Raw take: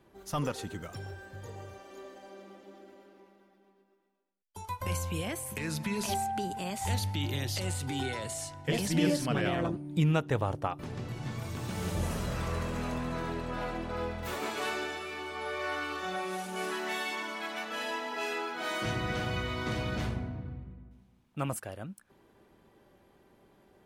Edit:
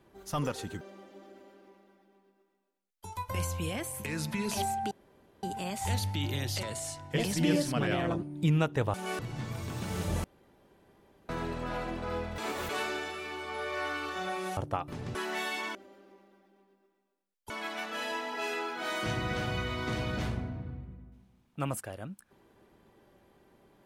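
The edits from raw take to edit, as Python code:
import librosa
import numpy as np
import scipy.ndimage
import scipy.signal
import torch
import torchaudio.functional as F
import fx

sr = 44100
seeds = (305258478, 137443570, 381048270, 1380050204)

y = fx.edit(x, sr, fx.cut(start_s=0.81, length_s=1.52),
    fx.duplicate(start_s=2.83, length_s=1.75, to_s=17.29),
    fx.insert_room_tone(at_s=6.43, length_s=0.52),
    fx.cut(start_s=7.63, length_s=0.54),
    fx.swap(start_s=10.48, length_s=0.58, other_s=16.44, other_length_s=0.25),
    fx.room_tone_fill(start_s=12.11, length_s=1.05),
    fx.reverse_span(start_s=14.25, length_s=0.31), tone=tone)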